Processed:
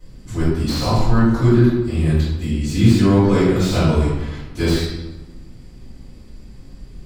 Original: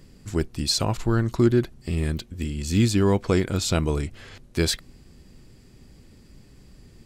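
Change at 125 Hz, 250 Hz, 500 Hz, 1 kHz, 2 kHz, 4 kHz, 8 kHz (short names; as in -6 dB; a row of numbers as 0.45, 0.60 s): +8.0, +8.0, +5.5, +7.5, +5.0, +0.5, -3.0 dB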